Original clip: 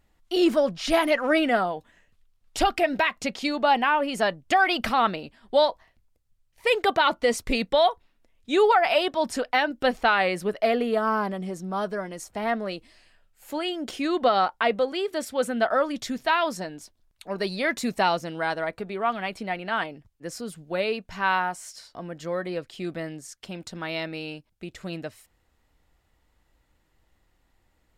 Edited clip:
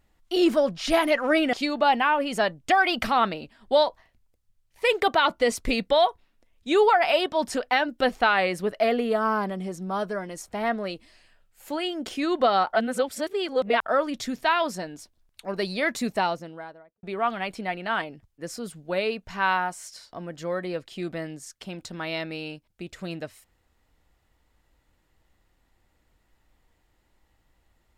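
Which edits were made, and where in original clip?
0:01.53–0:03.35: remove
0:14.55–0:15.68: reverse
0:17.75–0:18.85: fade out and dull

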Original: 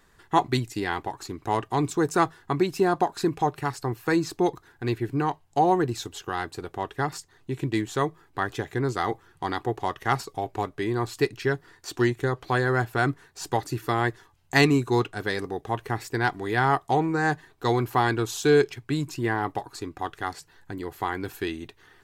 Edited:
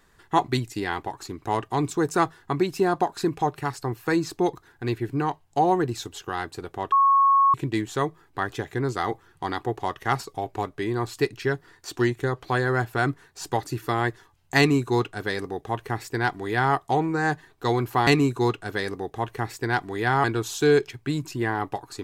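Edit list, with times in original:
0:06.92–0:07.54: beep over 1,100 Hz −14.5 dBFS
0:14.58–0:16.75: duplicate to 0:18.07

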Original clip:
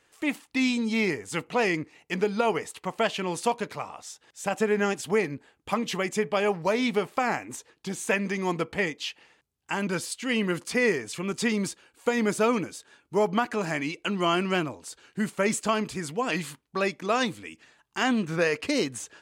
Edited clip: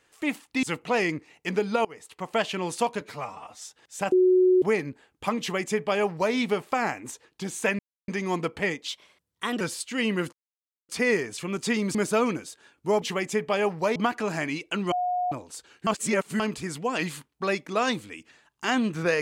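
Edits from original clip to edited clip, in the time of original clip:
0:00.63–0:01.28: remove
0:02.50–0:03.01: fade in, from −24 dB
0:03.66–0:04.06: time-stretch 1.5×
0:04.57–0:05.07: beep over 368 Hz −15.5 dBFS
0:05.85–0:06.79: duplicate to 0:13.29
0:08.24: splice in silence 0.29 s
0:09.04–0:09.92: play speed 121%
0:10.64: splice in silence 0.56 s
0:11.70–0:12.22: remove
0:14.25–0:14.65: beep over 721 Hz −23.5 dBFS
0:15.20–0:15.73: reverse

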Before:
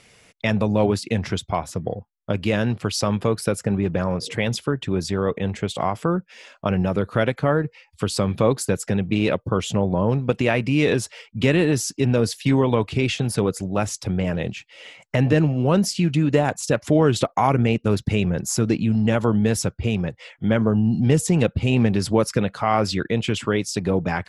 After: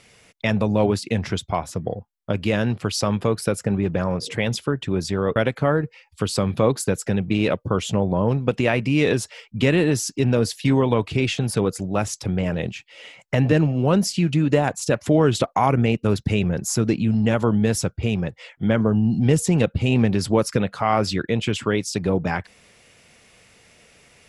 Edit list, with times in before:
0:05.36–0:07.17: remove

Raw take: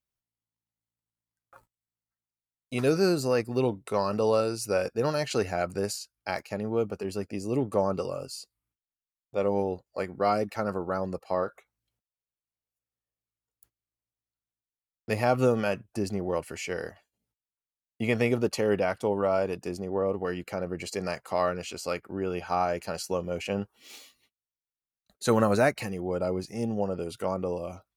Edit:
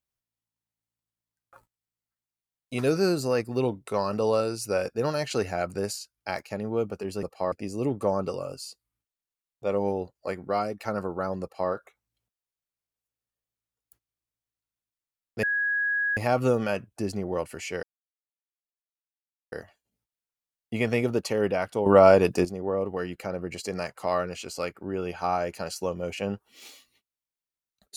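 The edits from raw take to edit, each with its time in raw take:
0:10.13–0:10.50: fade out, to −6.5 dB
0:11.13–0:11.42: duplicate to 0:07.23
0:15.14: insert tone 1,660 Hz −23 dBFS 0.74 s
0:16.80: splice in silence 1.69 s
0:19.14–0:19.73: clip gain +10.5 dB

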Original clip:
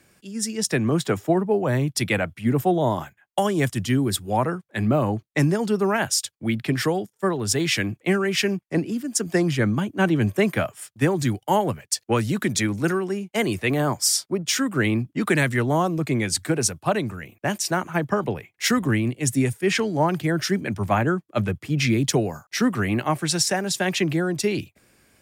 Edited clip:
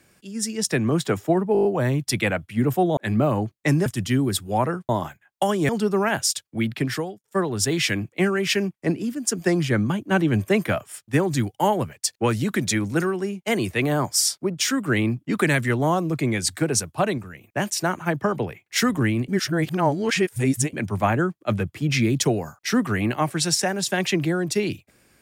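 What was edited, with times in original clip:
0:01.53: stutter 0.02 s, 7 plays
0:02.85–0:03.65: swap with 0:04.68–0:05.57
0:06.51–0:07.12: fade out equal-power
0:17.06–0:17.31: clip gain −4.5 dB
0:19.16–0:20.61: reverse

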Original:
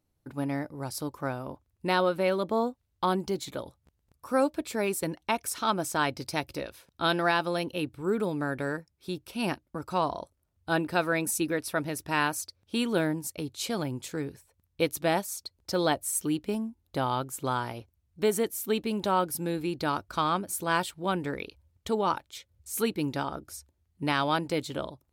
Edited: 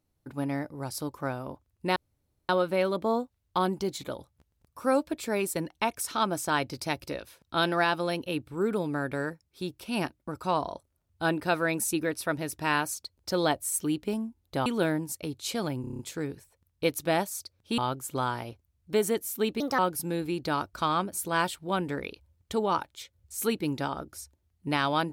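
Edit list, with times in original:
0:01.96: splice in room tone 0.53 s
0:12.43–0:12.81: swap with 0:15.37–0:17.07
0:13.96: stutter 0.03 s, 7 plays
0:18.89–0:19.14: play speed 135%

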